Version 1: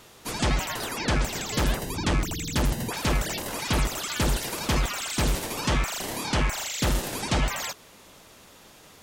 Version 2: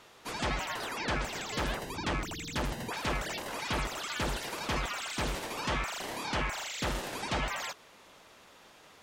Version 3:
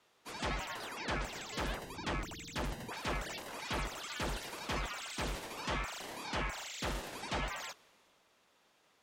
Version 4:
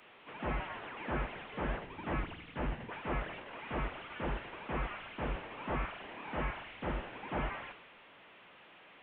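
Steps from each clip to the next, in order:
overdrive pedal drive 9 dB, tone 2600 Hz, clips at -14 dBFS; gain -6 dB
three-band expander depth 40%; gain -5 dB
delta modulation 16 kbps, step -45 dBFS; three-band expander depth 70%; gain +2 dB

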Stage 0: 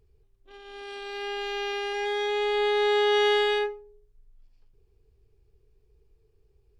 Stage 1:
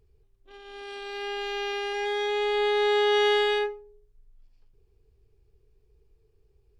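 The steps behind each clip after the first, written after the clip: nothing audible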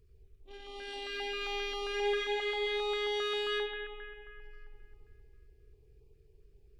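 compressor 2:1, threshold -33 dBFS, peak gain reduction 7.5 dB; analogue delay 93 ms, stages 2048, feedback 77%, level -3 dB; stepped notch 7.5 Hz 790–1600 Hz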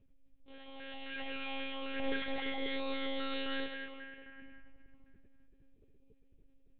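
monotone LPC vocoder at 8 kHz 270 Hz; gain -2.5 dB

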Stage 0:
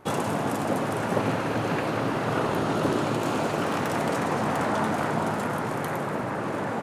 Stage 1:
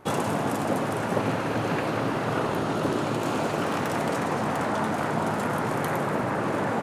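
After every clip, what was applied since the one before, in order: vocal rider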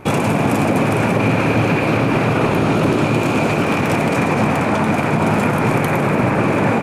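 bell 2400 Hz +14 dB 0.24 oct; limiter -18.5 dBFS, peak gain reduction 7 dB; low shelf 330 Hz +8 dB; gain +8.5 dB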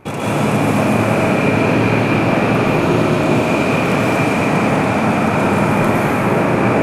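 digital reverb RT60 2.6 s, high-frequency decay 0.95×, pre-delay 90 ms, DRR -7.5 dB; gain -6.5 dB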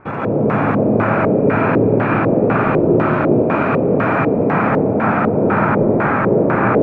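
LFO low-pass square 2 Hz 480–1500 Hz; gain -2 dB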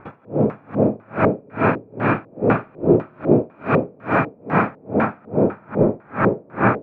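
dB-linear tremolo 2.4 Hz, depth 36 dB; gain +1 dB

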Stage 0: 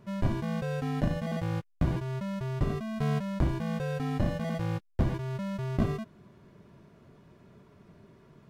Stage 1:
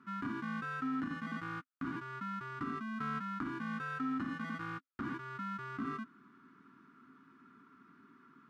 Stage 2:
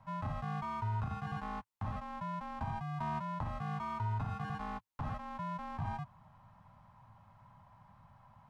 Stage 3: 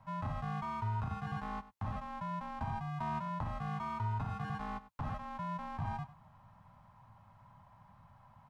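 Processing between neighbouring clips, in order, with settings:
double band-pass 590 Hz, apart 2.3 oct; limiter -35.5 dBFS, peak gain reduction 8 dB; tilt +3 dB/oct; gain +10.5 dB
frequency shift -370 Hz; gain +1 dB
echo 98 ms -16 dB

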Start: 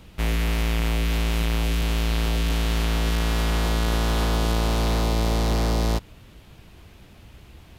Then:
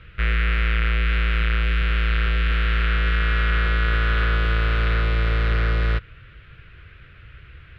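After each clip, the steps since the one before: EQ curve 140 Hz 0 dB, 220 Hz -16 dB, 480 Hz -4 dB, 860 Hz -19 dB, 1400 Hz +9 dB, 2600 Hz +2 dB, 3900 Hz -8 dB, 6500 Hz -29 dB; gain +3 dB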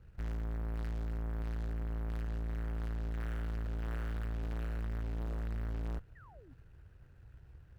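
median filter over 41 samples; tube stage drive 27 dB, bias 0.6; painted sound fall, 6.15–6.54, 230–2000 Hz -52 dBFS; gain -7.5 dB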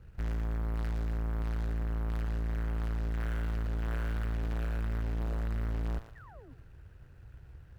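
thinning echo 0.117 s, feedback 39%, high-pass 770 Hz, level -8 dB; gain +4.5 dB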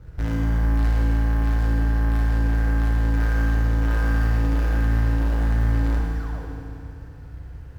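median filter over 15 samples; FDN reverb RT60 2.8 s, high-frequency decay 1×, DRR -2.5 dB; gain +8.5 dB

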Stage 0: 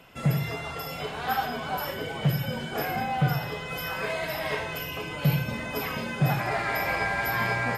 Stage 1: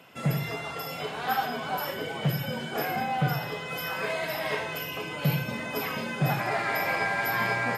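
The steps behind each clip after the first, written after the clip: HPF 140 Hz 12 dB/oct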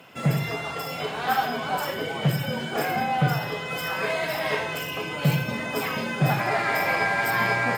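median filter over 3 samples; gain +4 dB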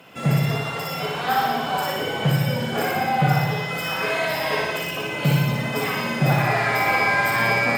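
flutter echo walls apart 10.2 m, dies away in 1 s; gain +1 dB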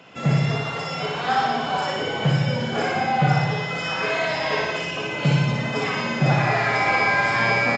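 downsampling 16000 Hz

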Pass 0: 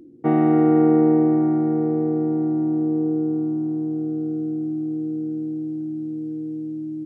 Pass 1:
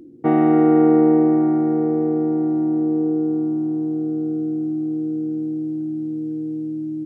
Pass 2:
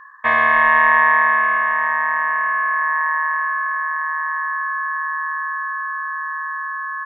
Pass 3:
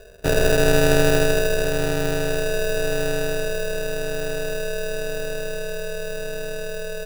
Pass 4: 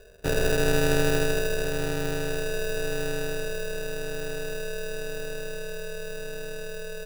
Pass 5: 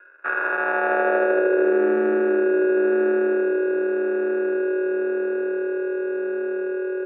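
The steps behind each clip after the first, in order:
dynamic EQ 120 Hz, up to -6 dB, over -33 dBFS, Q 1; gain +3 dB
ring modulator 1400 Hz; gain +3 dB
sample-and-hold 41×; gain -2 dB
notch 650 Hz, Q 13; gain -5.5 dB
high-pass sweep 1400 Hz -> 370 Hz, 0.14–1.99; mistuned SSB -67 Hz 300–2100 Hz; gain +6.5 dB

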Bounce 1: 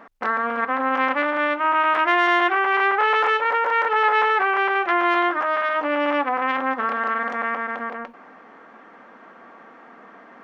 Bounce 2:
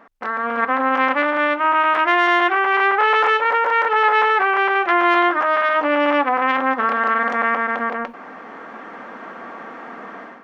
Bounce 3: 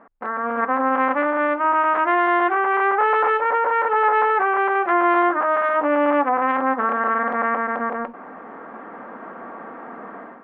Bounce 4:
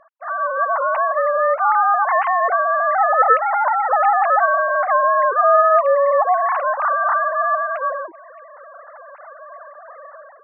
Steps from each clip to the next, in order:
AGC gain up to 14 dB; gain -3 dB
LPF 1400 Hz 12 dB/oct
sine-wave speech; dynamic EQ 900 Hz, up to +5 dB, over -28 dBFS, Q 0.72; gain -1.5 dB

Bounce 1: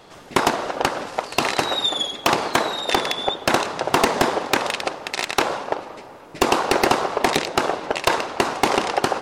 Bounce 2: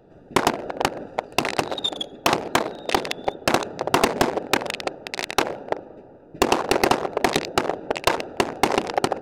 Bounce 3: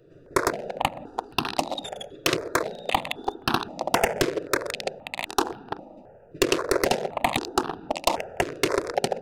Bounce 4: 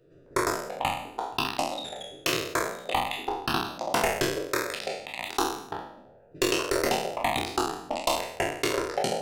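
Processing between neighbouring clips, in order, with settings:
Wiener smoothing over 41 samples
step phaser 3.8 Hz 220–2100 Hz
spectral trails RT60 0.67 s; gain -6.5 dB

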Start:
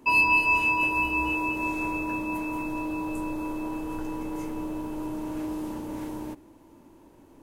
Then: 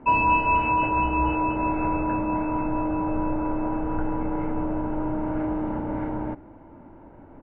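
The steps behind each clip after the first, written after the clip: LPF 1900 Hz 24 dB/oct; comb 1.4 ms, depth 39%; gain +8 dB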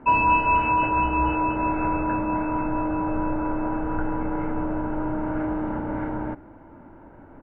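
bell 1500 Hz +6 dB 0.63 oct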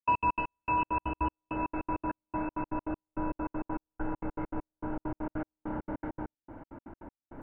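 reverse; upward compressor, threshold -30 dBFS; reverse; step gate ".x.x.x...xx" 199 bpm -60 dB; gain -7 dB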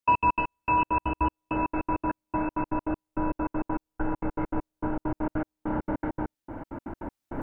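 recorder AGC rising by 5.1 dB/s; gain +5 dB

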